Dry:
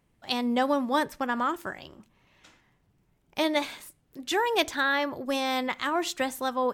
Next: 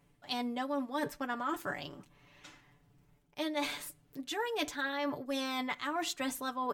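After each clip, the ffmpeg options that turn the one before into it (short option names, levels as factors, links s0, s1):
-af "aecho=1:1:6.9:0.75,areverse,acompressor=threshold=0.0224:ratio=5,areverse"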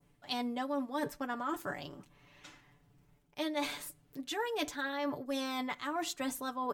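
-af "adynamicequalizer=threshold=0.00251:dfrequency=2500:dqfactor=0.71:tfrequency=2500:tqfactor=0.71:attack=5:release=100:ratio=0.375:range=2:mode=cutabove:tftype=bell"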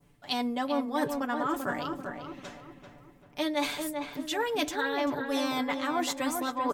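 -filter_complex "[0:a]asplit=2[s0][s1];[s1]adelay=390,lowpass=f=1700:p=1,volume=0.596,asplit=2[s2][s3];[s3]adelay=390,lowpass=f=1700:p=1,volume=0.46,asplit=2[s4][s5];[s5]adelay=390,lowpass=f=1700:p=1,volume=0.46,asplit=2[s6][s7];[s7]adelay=390,lowpass=f=1700:p=1,volume=0.46,asplit=2[s8][s9];[s9]adelay=390,lowpass=f=1700:p=1,volume=0.46,asplit=2[s10][s11];[s11]adelay=390,lowpass=f=1700:p=1,volume=0.46[s12];[s0][s2][s4][s6][s8][s10][s12]amix=inputs=7:normalize=0,volume=1.88"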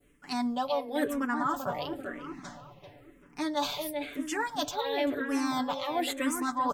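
-filter_complex "[0:a]asplit=2[s0][s1];[s1]afreqshift=-0.98[s2];[s0][s2]amix=inputs=2:normalize=1,volume=1.33"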